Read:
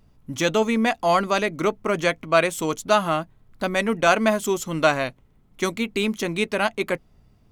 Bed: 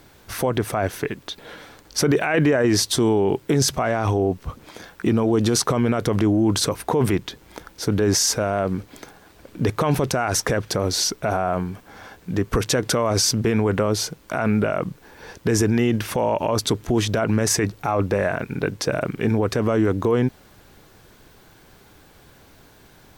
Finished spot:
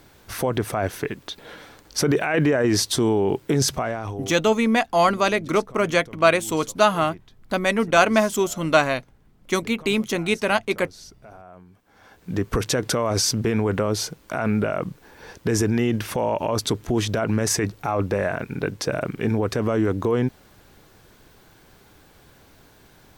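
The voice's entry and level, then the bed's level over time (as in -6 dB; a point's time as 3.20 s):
3.90 s, +1.5 dB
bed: 3.76 s -1.5 dB
4.57 s -22.5 dB
11.64 s -22.5 dB
12.31 s -2 dB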